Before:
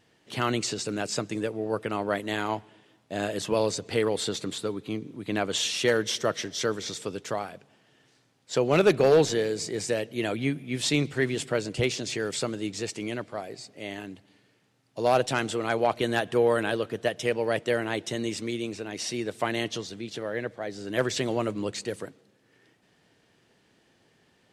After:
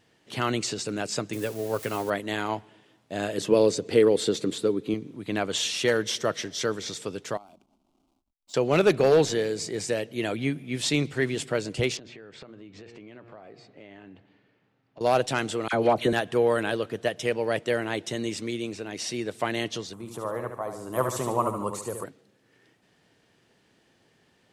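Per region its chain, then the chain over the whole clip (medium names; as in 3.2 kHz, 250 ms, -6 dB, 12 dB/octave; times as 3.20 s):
1.33–2.10 s: zero-crossing glitches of -30.5 dBFS + comb 7.5 ms, depth 40%
3.38–4.94 s: high-pass 220 Hz 6 dB/octave + resonant low shelf 580 Hz +7 dB, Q 1.5
7.37–8.54 s: compression 3:1, threshold -46 dBFS + hysteresis with a dead band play -53 dBFS + static phaser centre 470 Hz, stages 6
11.97–15.01 s: low-pass 2.5 kHz + de-hum 117.5 Hz, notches 36 + compression 8:1, threshold -42 dBFS
15.68–16.13 s: peaking EQ 220 Hz +6 dB 2.6 oct + phase dispersion lows, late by 50 ms, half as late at 1.4 kHz
19.93–22.04 s: FFT filter 160 Hz 0 dB, 270 Hz -5 dB, 730 Hz +2 dB, 1.1 kHz +14 dB, 1.6 kHz -9 dB, 3.4 kHz -12 dB, 4.8 kHz -12 dB, 11 kHz +13 dB + feedback delay 73 ms, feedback 47%, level -7 dB
whole clip: none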